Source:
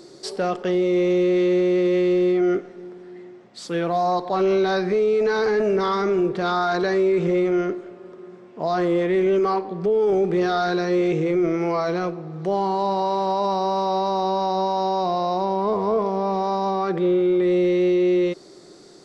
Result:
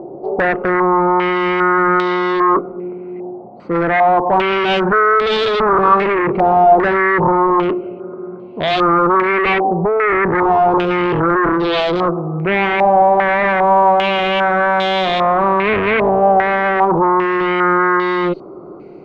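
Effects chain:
adaptive Wiener filter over 25 samples
harmonic generator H 5 −7 dB, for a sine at −14 dBFS
low-pass on a step sequencer 2.5 Hz 780–3,600 Hz
level +2.5 dB

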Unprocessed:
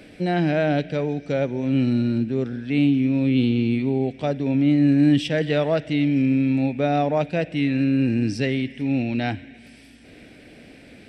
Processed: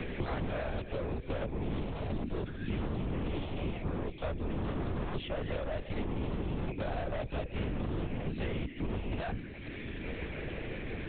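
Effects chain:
gain into a clipping stage and back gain 24 dB
mains-hum notches 60/120/180/240/300/360/420/480/540 Hz
linear-prediction vocoder at 8 kHz whisper
multiband upward and downward compressor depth 100%
level −8.5 dB

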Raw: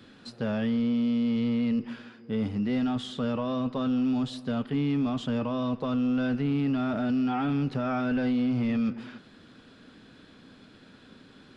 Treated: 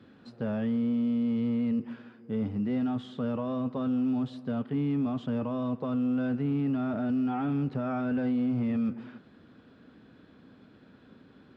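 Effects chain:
high-pass filter 46 Hz 24 dB per octave
log-companded quantiser 8 bits
low-pass filter 1,200 Hz 6 dB per octave
level −1.5 dB

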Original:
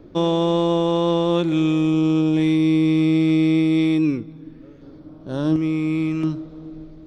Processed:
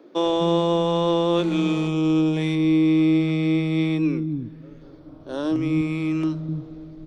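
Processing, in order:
0:02.55–0:04.17: high-shelf EQ 5,300 Hz −9 dB
multiband delay without the direct sound highs, lows 250 ms, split 260 Hz
0:01.37–0:01.88: phone interference −40 dBFS

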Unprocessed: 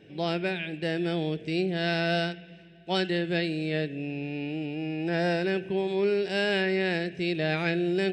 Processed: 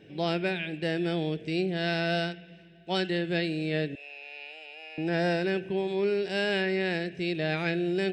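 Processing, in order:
0:03.95–0:04.98: Bessel high-pass filter 940 Hz, order 8
in parallel at +2.5 dB: speech leveller within 4 dB 2 s
on the sum: level −8.5 dB

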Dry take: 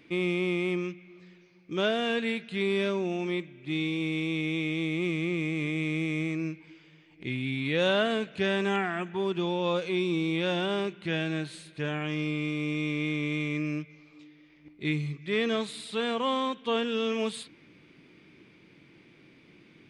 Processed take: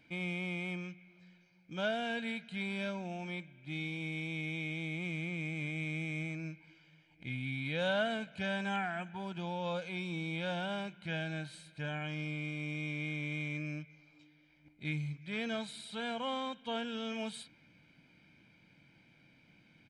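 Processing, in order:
comb filter 1.3 ms, depth 74%
level −8.5 dB

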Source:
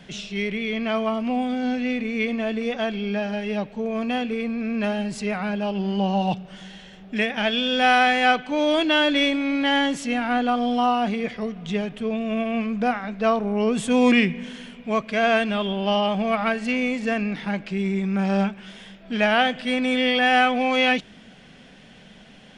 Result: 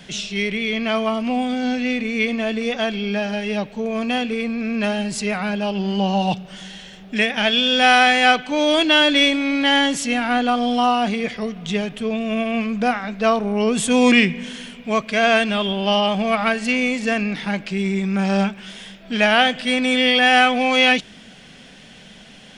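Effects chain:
high-shelf EQ 3,200 Hz +9 dB
level +2.5 dB

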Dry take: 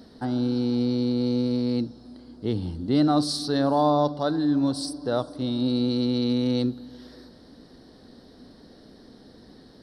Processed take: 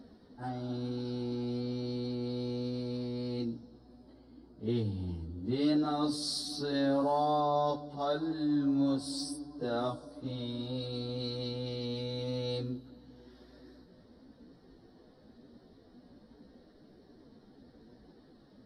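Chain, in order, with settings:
time stretch by phase vocoder 1.9×
one half of a high-frequency compander decoder only
level −4.5 dB

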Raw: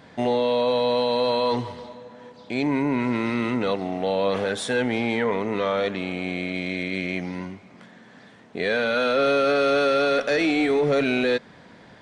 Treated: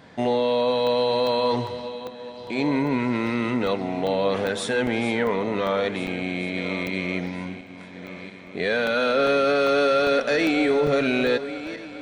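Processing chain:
feedback delay that plays each chunk backwards 692 ms, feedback 54%, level −12.5 dB
regular buffer underruns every 0.40 s, samples 64, zero, from 0:00.87

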